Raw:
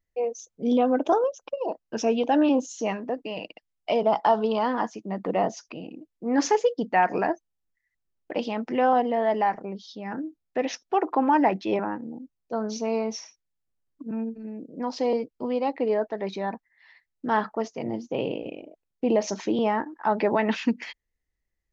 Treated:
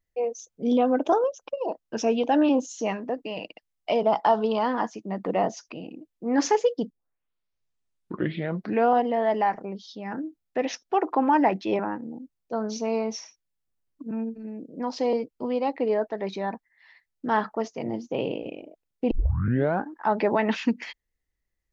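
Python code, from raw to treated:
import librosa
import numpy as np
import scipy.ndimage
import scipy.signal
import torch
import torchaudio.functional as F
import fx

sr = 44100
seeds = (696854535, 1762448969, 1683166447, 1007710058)

y = fx.edit(x, sr, fx.tape_start(start_s=6.9, length_s=2.11),
    fx.tape_start(start_s=19.11, length_s=0.78), tone=tone)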